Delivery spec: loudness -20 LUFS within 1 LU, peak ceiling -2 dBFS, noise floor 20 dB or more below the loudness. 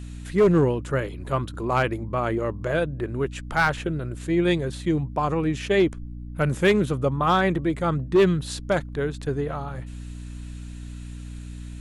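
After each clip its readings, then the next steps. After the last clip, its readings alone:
clipped 0.5%; flat tops at -12.5 dBFS; hum 60 Hz; harmonics up to 300 Hz; hum level -34 dBFS; loudness -24.0 LUFS; peak -12.5 dBFS; loudness target -20.0 LUFS
-> clip repair -12.5 dBFS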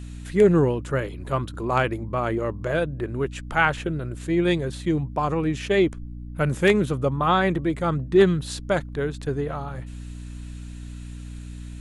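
clipped 0.0%; hum 60 Hz; harmonics up to 300 Hz; hum level -34 dBFS
-> notches 60/120/180/240/300 Hz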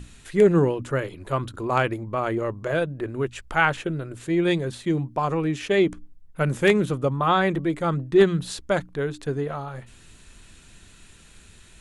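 hum none; loudness -24.0 LUFS; peak -4.5 dBFS; loudness target -20.0 LUFS
-> gain +4 dB; limiter -2 dBFS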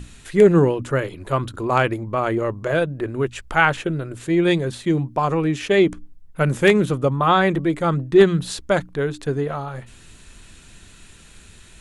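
loudness -20.0 LUFS; peak -2.0 dBFS; noise floor -47 dBFS

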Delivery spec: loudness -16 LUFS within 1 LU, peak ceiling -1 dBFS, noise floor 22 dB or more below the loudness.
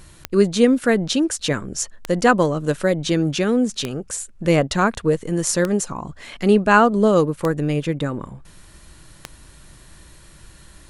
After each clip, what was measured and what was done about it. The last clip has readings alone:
clicks 6; loudness -19.5 LUFS; peak -2.0 dBFS; loudness target -16.0 LUFS
-> de-click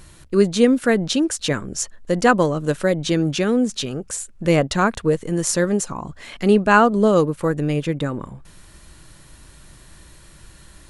clicks 0; loudness -19.5 LUFS; peak -2.0 dBFS; loudness target -16.0 LUFS
-> gain +3.5 dB; limiter -1 dBFS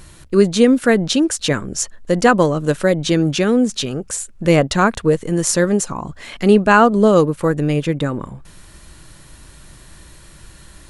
loudness -16.0 LUFS; peak -1.0 dBFS; noise floor -44 dBFS

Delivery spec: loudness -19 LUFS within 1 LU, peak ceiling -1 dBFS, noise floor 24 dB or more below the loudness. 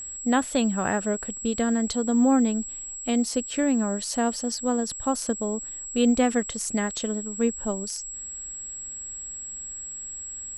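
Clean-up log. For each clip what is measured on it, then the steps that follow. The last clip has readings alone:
ticks 26/s; steady tone 7700 Hz; tone level -34 dBFS; loudness -26.5 LUFS; peak -10.0 dBFS; loudness target -19.0 LUFS
-> de-click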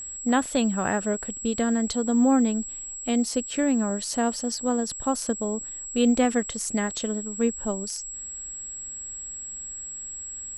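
ticks 0.095/s; steady tone 7700 Hz; tone level -34 dBFS
-> notch 7700 Hz, Q 30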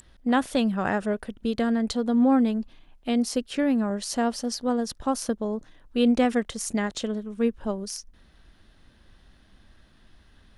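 steady tone none; loudness -26.0 LUFS; peak -10.0 dBFS; loudness target -19.0 LUFS
-> gain +7 dB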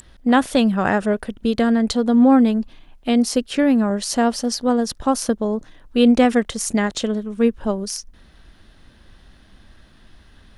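loudness -19.0 LUFS; peak -3.0 dBFS; noise floor -51 dBFS

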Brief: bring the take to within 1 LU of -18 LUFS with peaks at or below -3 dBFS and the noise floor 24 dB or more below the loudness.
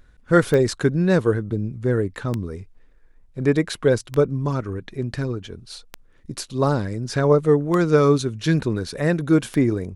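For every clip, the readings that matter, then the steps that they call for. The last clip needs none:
clicks 6; loudness -21.0 LUFS; peak -3.5 dBFS; loudness target -18.0 LUFS
-> de-click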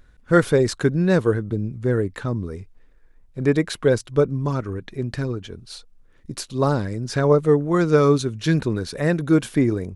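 clicks 0; loudness -21.0 LUFS; peak -3.5 dBFS; loudness target -18.0 LUFS
-> gain +3 dB; limiter -3 dBFS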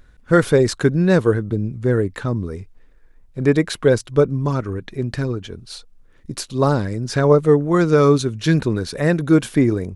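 loudness -18.5 LUFS; peak -3.0 dBFS; noise floor -51 dBFS

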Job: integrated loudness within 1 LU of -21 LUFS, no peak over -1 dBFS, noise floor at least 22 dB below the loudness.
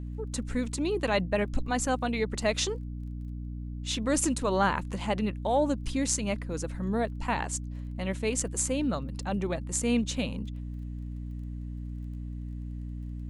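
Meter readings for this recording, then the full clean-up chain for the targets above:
ticks 18/s; hum 60 Hz; harmonics up to 300 Hz; hum level -34 dBFS; loudness -31.0 LUFS; peak -10.0 dBFS; loudness target -21.0 LUFS
-> de-click; de-hum 60 Hz, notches 5; gain +10 dB; limiter -1 dBFS

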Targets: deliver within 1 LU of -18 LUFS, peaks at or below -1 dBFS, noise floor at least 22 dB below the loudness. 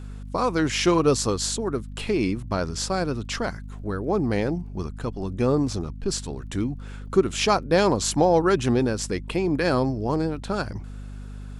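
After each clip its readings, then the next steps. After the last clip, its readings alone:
ticks 22/s; hum 50 Hz; harmonics up to 250 Hz; hum level -34 dBFS; loudness -24.5 LUFS; peak -6.5 dBFS; loudness target -18.0 LUFS
-> de-click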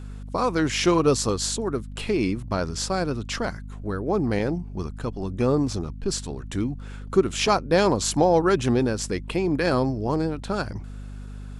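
ticks 0.17/s; hum 50 Hz; harmonics up to 250 Hz; hum level -34 dBFS
-> de-hum 50 Hz, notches 5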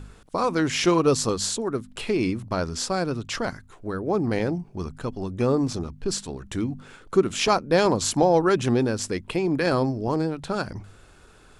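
hum none; loudness -24.5 LUFS; peak -6.5 dBFS; loudness target -18.0 LUFS
-> gain +6.5 dB; limiter -1 dBFS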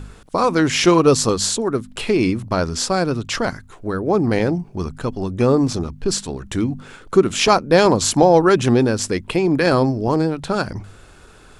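loudness -18.0 LUFS; peak -1.0 dBFS; noise floor -45 dBFS

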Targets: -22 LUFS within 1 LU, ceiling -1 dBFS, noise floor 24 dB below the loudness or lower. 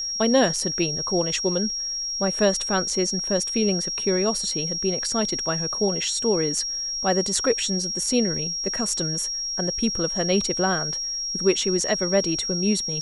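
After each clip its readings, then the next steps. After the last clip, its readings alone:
ticks 49/s; steady tone 5600 Hz; tone level -26 dBFS; loudness -22.5 LUFS; peak -5.5 dBFS; loudness target -22.0 LUFS
-> de-click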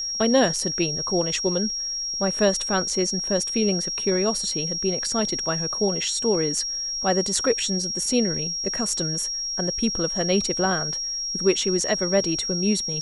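ticks 0.15/s; steady tone 5600 Hz; tone level -26 dBFS
-> notch 5600 Hz, Q 30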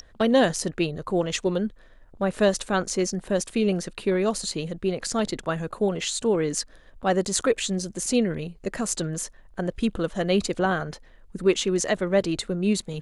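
steady tone none; loudness -25.5 LUFS; peak -5.5 dBFS; loudness target -22.0 LUFS
-> gain +3.5 dB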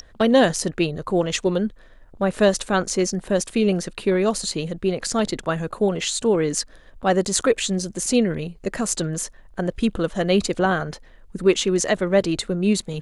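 loudness -22.0 LUFS; peak -2.0 dBFS; noise floor -48 dBFS

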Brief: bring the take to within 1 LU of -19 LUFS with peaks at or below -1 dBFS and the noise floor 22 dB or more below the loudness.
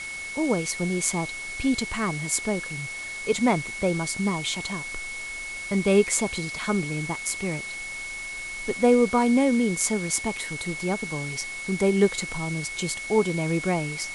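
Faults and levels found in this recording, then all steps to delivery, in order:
steady tone 2200 Hz; tone level -33 dBFS; noise floor -35 dBFS; noise floor target -48 dBFS; loudness -25.5 LUFS; peak -8.0 dBFS; loudness target -19.0 LUFS
-> notch 2200 Hz, Q 30; denoiser 13 dB, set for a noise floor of -35 dBFS; gain +6.5 dB

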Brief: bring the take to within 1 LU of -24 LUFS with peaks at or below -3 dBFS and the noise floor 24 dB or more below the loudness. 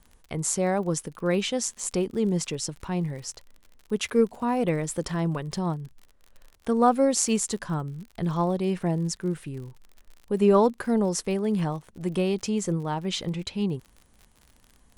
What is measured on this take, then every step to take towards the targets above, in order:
ticks 54/s; loudness -26.5 LUFS; peak -7.5 dBFS; loudness target -24.0 LUFS
-> de-click; gain +2.5 dB

